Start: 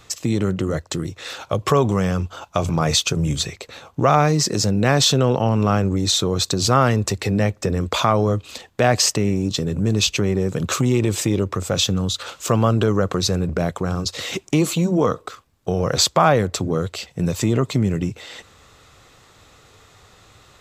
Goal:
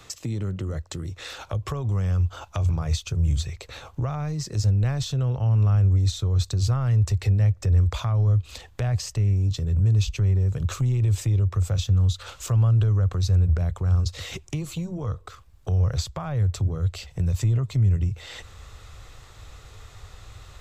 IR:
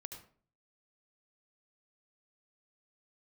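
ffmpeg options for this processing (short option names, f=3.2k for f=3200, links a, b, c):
-filter_complex "[0:a]acrossover=split=120[a][b];[b]acompressor=threshold=-35dB:ratio=4[c];[a][c]amix=inputs=2:normalize=0,asubboost=boost=8:cutoff=75"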